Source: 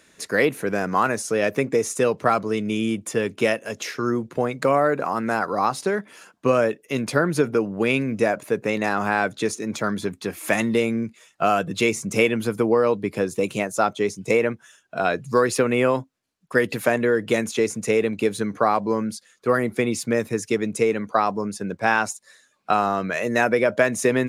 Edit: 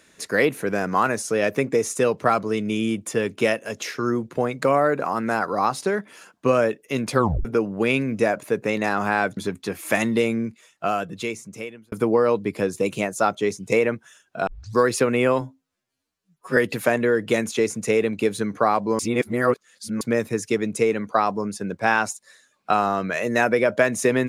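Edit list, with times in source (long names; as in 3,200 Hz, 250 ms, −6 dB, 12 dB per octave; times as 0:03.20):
0:07.15: tape stop 0.30 s
0:09.37–0:09.95: remove
0:10.90–0:12.50: fade out linear
0:15.05: tape start 0.29 s
0:15.99–0:16.57: time-stretch 2×
0:18.99–0:20.01: reverse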